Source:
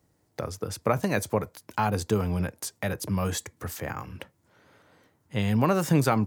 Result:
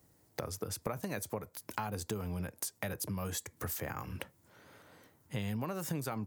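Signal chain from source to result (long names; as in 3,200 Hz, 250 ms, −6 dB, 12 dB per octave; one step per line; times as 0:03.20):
high-shelf EQ 9,500 Hz +11 dB
downward compressor 6 to 1, threshold −35 dBFS, peak gain reduction 16.5 dB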